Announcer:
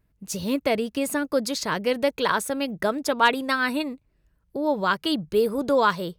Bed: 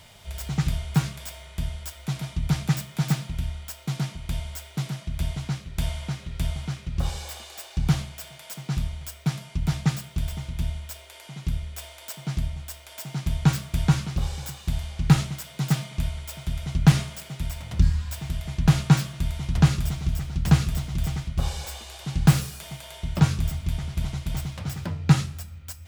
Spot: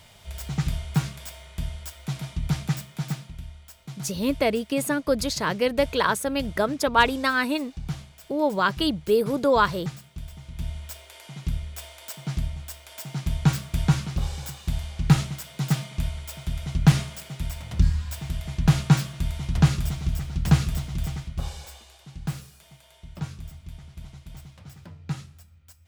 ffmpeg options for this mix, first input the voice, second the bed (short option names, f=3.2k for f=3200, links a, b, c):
-filter_complex "[0:a]adelay=3750,volume=0.5dB[a];[1:a]volume=8dB,afade=t=out:st=2.49:d=0.93:silence=0.375837,afade=t=in:st=10.4:d=0.47:silence=0.334965,afade=t=out:st=20.72:d=1.36:silence=0.223872[b];[a][b]amix=inputs=2:normalize=0"